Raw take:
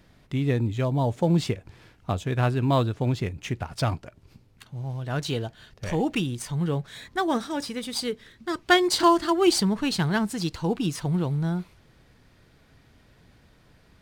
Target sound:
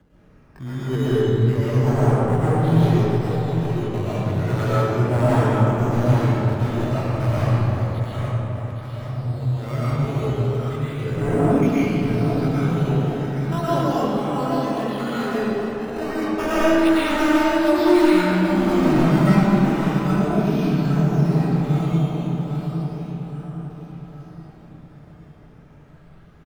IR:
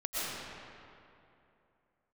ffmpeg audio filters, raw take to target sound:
-filter_complex "[0:a]aphaser=in_gain=1:out_gain=1:delay=2.3:decay=0.43:speed=1:type=triangular,afreqshift=19,atempo=0.53,aresample=11025,aeval=exprs='0.158*(abs(mod(val(0)/0.158+3,4)-2)-1)':c=same,aresample=44100,lowshelf=f=230:g=-2.5,aecho=1:1:814|1628|2442|3256|4070|4884:0.531|0.255|0.122|0.0587|0.0282|0.0135,asetrate=38170,aresample=44100,atempo=1.15535,acrusher=samples=9:mix=1:aa=0.000001:lfo=1:lforange=9:lforate=0.33,highshelf=f=2700:g=-11[s0];[1:a]atrim=start_sample=2205[s1];[s0][s1]afir=irnorm=-1:irlink=0"

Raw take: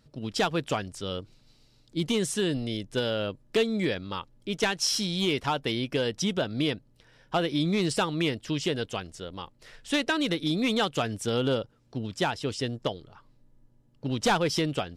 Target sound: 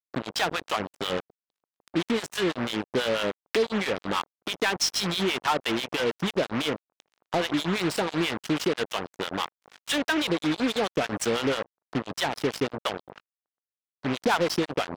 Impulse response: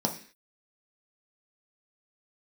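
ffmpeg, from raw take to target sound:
-filter_complex "[0:a]highpass=95,tiltshelf=f=780:g=4,acompressor=threshold=0.0178:ratio=3,acrossover=split=690[s0][s1];[s0]aeval=exprs='val(0)*(1-1/2+1/2*cos(2*PI*6.1*n/s))':c=same[s2];[s1]aeval=exprs='val(0)*(1-1/2-1/2*cos(2*PI*6.1*n/s))':c=same[s3];[s2][s3]amix=inputs=2:normalize=0,aeval=exprs='val(0)+0.00224*(sin(2*PI*50*n/s)+sin(2*PI*2*50*n/s)/2+sin(2*PI*3*50*n/s)/3+sin(2*PI*4*50*n/s)/4+sin(2*PI*5*50*n/s)/5)':c=same,acrusher=bits=6:mix=0:aa=0.5,asplit=2[s4][s5];[s5]highpass=f=720:p=1,volume=39.8,asoftclip=type=tanh:threshold=0.708[s6];[s4][s6]amix=inputs=2:normalize=0,lowpass=f=4400:p=1,volume=0.501,volume=0.531"

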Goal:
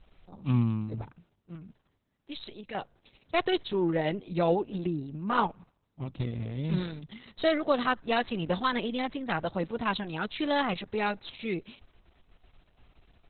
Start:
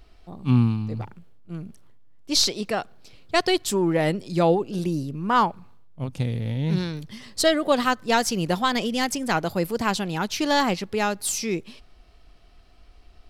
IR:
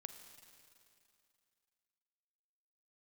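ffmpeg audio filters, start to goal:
-filter_complex "[0:a]asettb=1/sr,asplit=3[s0][s1][s2];[s0]atrim=end=1.554[s3];[s1]atrim=start=1.55:end=2.75,asetpts=PTS-STARTPTS,afade=t=in:d=0.004:c=qsin,afade=t=out:st=1.196:d=0.004:c=qsin,acrossover=split=1500|5300[s4][s5][s6];[s4]acompressor=threshold=0.0158:ratio=4[s7];[s5]acompressor=threshold=0.0178:ratio=4[s8];[s6]acompressor=threshold=0.0158:ratio=4[s9];[s7][s8][s9]amix=inputs=3:normalize=0[s10];[s2]atrim=start=2.746[s11];[s3][s10]acrossfade=d=0.004:c1=hsin:c2=qsin[s12];[s12][s11]acrossfade=d=0.004:c1=qsin:c2=hsin,volume=0.562" -ar 48000 -c:a libopus -b:a 6k

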